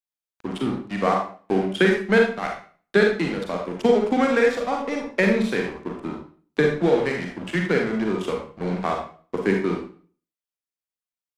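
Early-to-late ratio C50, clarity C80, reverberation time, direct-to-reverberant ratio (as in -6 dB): 4.0 dB, 9.0 dB, 0.40 s, 1.0 dB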